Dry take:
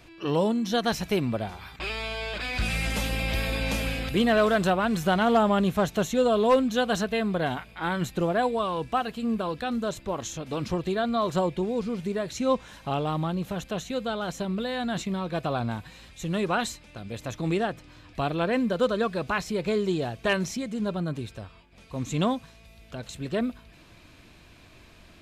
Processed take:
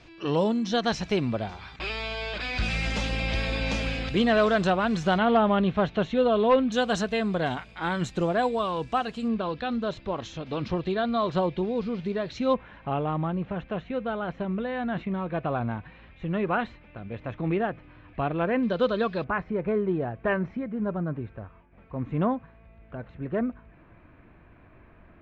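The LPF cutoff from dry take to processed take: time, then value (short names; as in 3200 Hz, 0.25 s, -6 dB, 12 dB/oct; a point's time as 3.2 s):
LPF 24 dB/oct
6400 Hz
from 5.18 s 3700 Hz
from 6.72 s 7900 Hz
from 9.28 s 4500 Hz
from 12.54 s 2500 Hz
from 18.63 s 4400 Hz
from 19.24 s 1900 Hz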